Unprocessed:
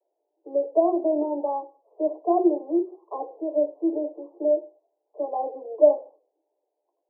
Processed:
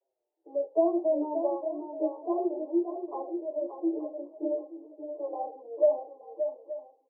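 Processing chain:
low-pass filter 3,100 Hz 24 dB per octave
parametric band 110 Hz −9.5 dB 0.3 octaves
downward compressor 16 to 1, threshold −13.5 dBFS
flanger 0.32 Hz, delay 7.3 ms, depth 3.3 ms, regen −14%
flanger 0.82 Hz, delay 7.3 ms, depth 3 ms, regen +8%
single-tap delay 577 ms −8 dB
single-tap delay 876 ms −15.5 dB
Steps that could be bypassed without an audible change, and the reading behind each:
low-pass filter 3,100 Hz: nothing at its input above 1,100 Hz
parametric band 110 Hz: nothing at its input below 250 Hz

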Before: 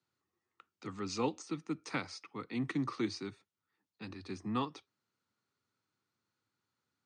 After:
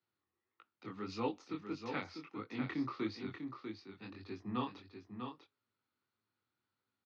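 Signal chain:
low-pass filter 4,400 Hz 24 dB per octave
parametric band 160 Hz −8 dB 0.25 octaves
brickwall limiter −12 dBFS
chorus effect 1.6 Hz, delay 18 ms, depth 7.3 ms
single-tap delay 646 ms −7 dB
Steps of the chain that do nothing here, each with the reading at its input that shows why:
brickwall limiter −12 dBFS: peak of its input −20.5 dBFS

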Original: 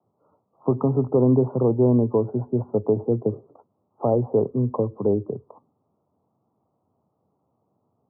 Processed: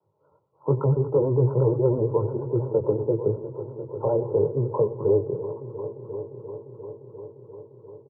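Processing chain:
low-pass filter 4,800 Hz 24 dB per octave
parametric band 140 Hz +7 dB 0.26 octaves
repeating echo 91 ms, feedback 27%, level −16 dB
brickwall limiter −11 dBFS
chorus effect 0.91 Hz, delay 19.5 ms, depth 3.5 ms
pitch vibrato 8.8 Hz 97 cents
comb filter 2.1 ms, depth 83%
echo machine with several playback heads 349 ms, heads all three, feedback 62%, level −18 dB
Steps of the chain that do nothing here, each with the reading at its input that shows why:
low-pass filter 4,800 Hz: nothing at its input above 1,100 Hz

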